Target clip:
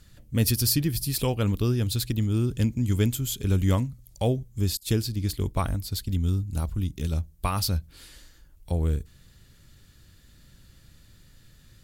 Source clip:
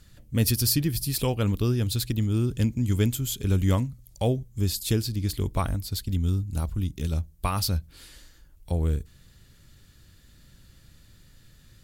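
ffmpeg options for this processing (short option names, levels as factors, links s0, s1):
-filter_complex "[0:a]asettb=1/sr,asplit=3[s0][s1][s2];[s0]atrim=end=4.774[s3];[s1]atrim=start=4.77:end=5.73,asetpts=PTS-STARTPTS,afade=t=in:d=0.004:c=qsin,afade=t=out:st=0.956:d=0.004:c=qsin,agate=range=0.0224:threshold=0.0398:ratio=3:detection=peak[s4];[s2]atrim=start=5.726[s5];[s3][s4]acrossfade=d=0.004:c1=hsin:c2=qsin[s6];[s6][s5]acrossfade=d=0.004:c1=qsin:c2=hsin"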